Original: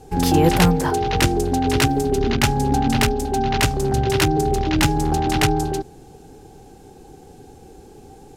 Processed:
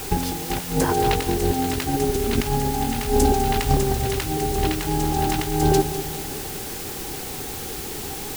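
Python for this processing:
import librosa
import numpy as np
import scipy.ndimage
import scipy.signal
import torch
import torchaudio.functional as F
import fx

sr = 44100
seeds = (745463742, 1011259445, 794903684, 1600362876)

p1 = fx.over_compress(x, sr, threshold_db=-23.0, ratio=-0.5)
p2 = fx.quant_dither(p1, sr, seeds[0], bits=6, dither='triangular')
p3 = p2 + fx.echo_feedback(p2, sr, ms=200, feedback_pct=55, wet_db=-12.0, dry=0)
y = F.gain(torch.from_numpy(p3), 2.0).numpy()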